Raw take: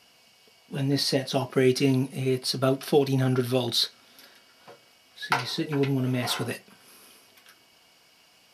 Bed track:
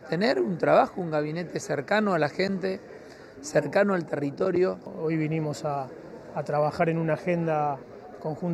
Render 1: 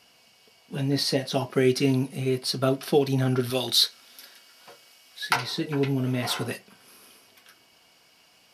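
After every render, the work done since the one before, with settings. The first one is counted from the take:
0:03.50–0:05.36: spectral tilt +2 dB per octave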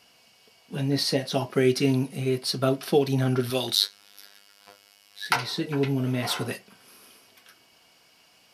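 0:03.75–0:05.26: phases set to zero 101 Hz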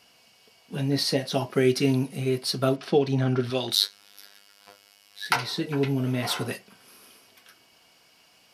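0:02.76–0:03.71: high-frequency loss of the air 89 metres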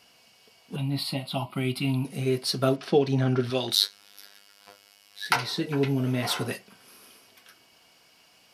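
0:00.76–0:02.05: phaser with its sweep stopped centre 1,700 Hz, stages 6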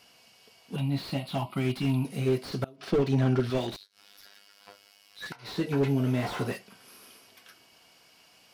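gate with flip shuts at −9 dBFS, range −28 dB
slew-rate limiting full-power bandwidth 38 Hz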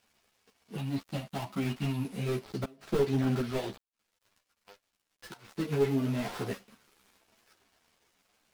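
gap after every zero crossing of 0.19 ms
string-ensemble chorus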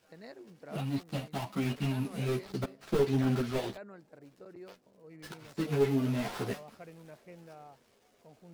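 mix in bed track −25.5 dB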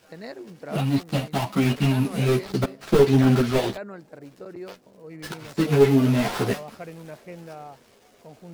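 level +11 dB

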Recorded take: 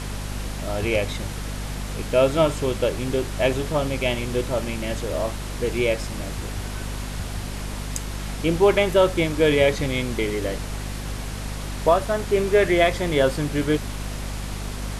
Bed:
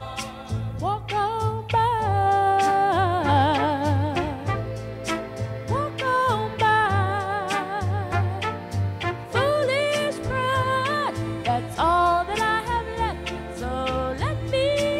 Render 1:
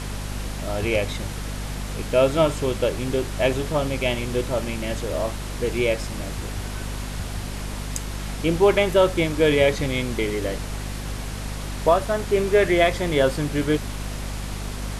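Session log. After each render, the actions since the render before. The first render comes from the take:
no processing that can be heard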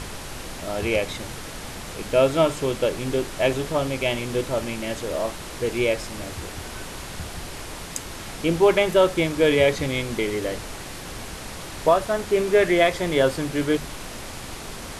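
mains-hum notches 50/100/150/200/250 Hz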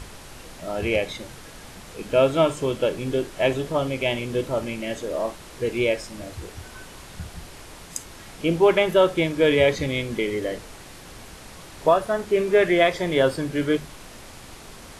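noise reduction from a noise print 7 dB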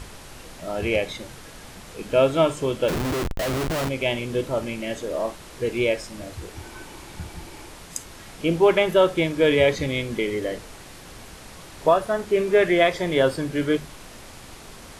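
0:02.88–0:03.89: comparator with hysteresis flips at −31.5 dBFS
0:06.54–0:07.69: hollow resonant body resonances 330/870/2,300 Hz, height 9 dB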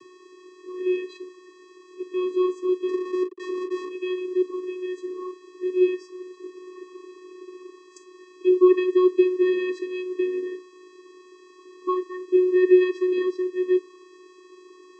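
channel vocoder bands 16, square 366 Hz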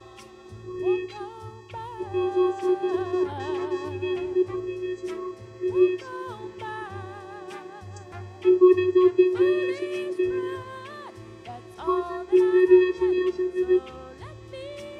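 mix in bed −16.5 dB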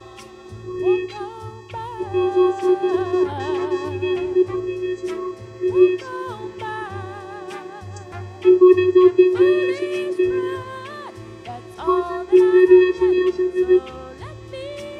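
level +6 dB
brickwall limiter −3 dBFS, peak gain reduction 2.5 dB

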